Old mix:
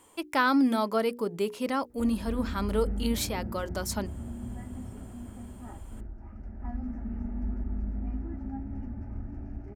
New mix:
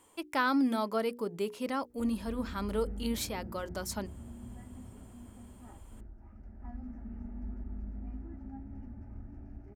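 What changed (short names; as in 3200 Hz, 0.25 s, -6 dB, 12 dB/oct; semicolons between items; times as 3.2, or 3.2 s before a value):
speech -4.5 dB; background -8.0 dB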